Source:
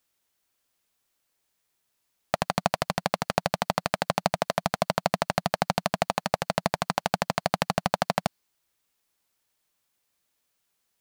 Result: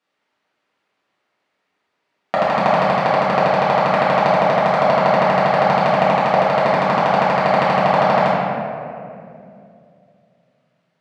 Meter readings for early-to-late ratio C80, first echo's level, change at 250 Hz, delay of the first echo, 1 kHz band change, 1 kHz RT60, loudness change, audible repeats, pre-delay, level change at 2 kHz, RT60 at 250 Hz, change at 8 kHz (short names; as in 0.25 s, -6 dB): -0.5 dB, none, +10.0 dB, none, +13.5 dB, 2.1 s, +12.0 dB, none, 4 ms, +11.0 dB, 3.1 s, n/a